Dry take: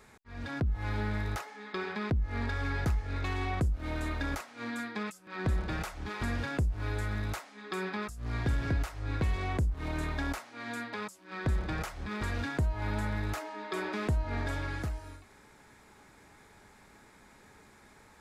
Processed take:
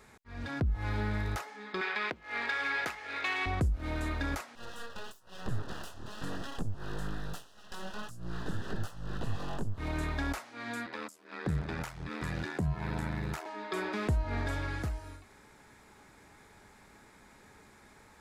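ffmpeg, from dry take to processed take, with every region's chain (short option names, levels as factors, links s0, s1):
-filter_complex "[0:a]asettb=1/sr,asplit=3[s0][s1][s2];[s0]atrim=end=1.814[s3];[s1]atrim=start=1.81:end=3.46,asetpts=PTS-STARTPTS,afade=t=in:d=0.004:c=qsin,afade=t=out:st=1.646:d=0.004:c=qsin,highpass=460,equalizer=f=2400:w=0.8:g=9[s4];[s2]atrim=start=3.456[s5];[s3][s4]acrossfade=d=0.004:c1=hsin:c2=qsin[s6];[s6][s5]acrossfade=d=0.004:c1=qsin:c2=hsin,asettb=1/sr,asplit=3[s7][s8][s9];[s7]atrim=end=4.554[s10];[s8]atrim=start=4.55:end=9.78,asetpts=PTS-STARTPTS,afade=t=in:d=0.004:c=qsin,afade=t=out:st=5.226:d=0.004:c=qsin,flanger=delay=17:depth=5.7:speed=1.1,aeval=exprs='abs(val(0))':c=same,asuperstop=centerf=2200:order=4:qfactor=2.8[s11];[s9]atrim=start=9.776[s12];[s10][s11]acrossfade=d=0.004:c1=hsin:c2=qsin[s13];[s13][s12]acrossfade=d=0.004:c1=qsin:c2=hsin,asettb=1/sr,asplit=3[s14][s15][s16];[s14]atrim=end=10.864[s17];[s15]atrim=start=10.86:end=13.46,asetpts=PTS-STARTPTS,afade=t=in:d=0.004:c=qsin,afade=t=out:st=2.596:d=0.004:c=qsin,asubboost=boost=2.5:cutoff=53,afreqshift=52,aeval=exprs='val(0)*sin(2*PI*40*n/s)':c=same[s18];[s16]atrim=start=13.456[s19];[s17][s18]acrossfade=d=0.004:c1=hsin:c2=qsin[s20];[s20][s19]acrossfade=d=0.004:c1=qsin:c2=hsin"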